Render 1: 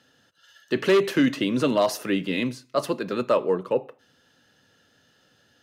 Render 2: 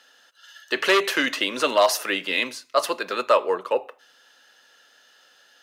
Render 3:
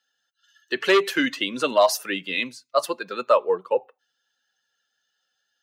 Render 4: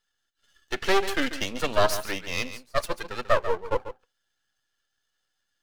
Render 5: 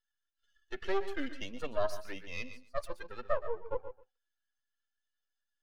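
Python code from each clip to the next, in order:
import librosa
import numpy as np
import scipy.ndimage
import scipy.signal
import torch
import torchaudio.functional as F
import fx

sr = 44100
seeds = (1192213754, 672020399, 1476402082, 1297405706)

y1 = scipy.signal.sosfilt(scipy.signal.butter(2, 720.0, 'highpass', fs=sr, output='sos'), x)
y1 = y1 * 10.0 ** (7.5 / 20.0)
y2 = fx.bin_expand(y1, sr, power=1.5)
y2 = fx.low_shelf(y2, sr, hz=370.0, db=8.5)
y3 = np.maximum(y2, 0.0)
y3 = y3 + 10.0 ** (-12.0 / 20.0) * np.pad(y3, (int(141 * sr / 1000.0), 0))[:len(y3)]
y4 = fx.spec_expand(y3, sr, power=1.5)
y4 = y4 + 10.0 ** (-15.0 / 20.0) * np.pad(y4, (int(121 * sr / 1000.0), 0))[:len(y4)]
y4 = y4 * 10.0 ** (-8.0 / 20.0)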